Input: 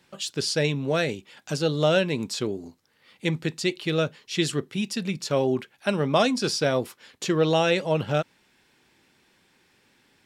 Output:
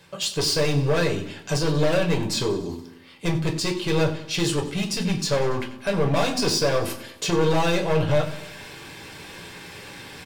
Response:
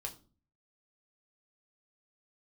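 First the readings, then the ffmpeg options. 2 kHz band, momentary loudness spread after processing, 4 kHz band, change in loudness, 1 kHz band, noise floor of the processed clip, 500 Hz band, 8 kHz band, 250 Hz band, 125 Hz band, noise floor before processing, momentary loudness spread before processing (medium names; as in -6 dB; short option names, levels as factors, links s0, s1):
+1.0 dB, 17 LU, +3.0 dB, +2.0 dB, +1.5 dB, -45 dBFS, +1.0 dB, +5.0 dB, +1.5 dB, +4.5 dB, -64 dBFS, 9 LU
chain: -filter_complex "[0:a]areverse,acompressor=mode=upward:threshold=0.0251:ratio=2.5,areverse,alimiter=limit=0.237:level=0:latency=1:release=176,volume=18.8,asoftclip=hard,volume=0.0531,aecho=1:1:94|188|282|376|470:0.158|0.0903|0.0515|0.0294|0.0167[s0];[1:a]atrim=start_sample=2205[s1];[s0][s1]afir=irnorm=-1:irlink=0,volume=2.66"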